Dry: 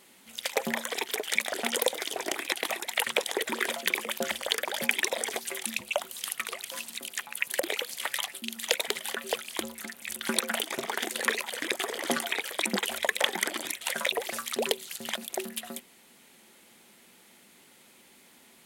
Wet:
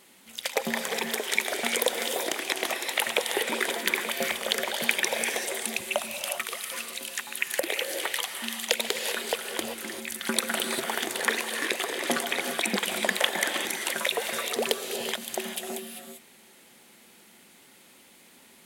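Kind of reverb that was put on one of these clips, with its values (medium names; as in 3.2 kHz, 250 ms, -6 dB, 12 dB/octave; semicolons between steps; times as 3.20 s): gated-style reverb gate 420 ms rising, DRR 4.5 dB; trim +1 dB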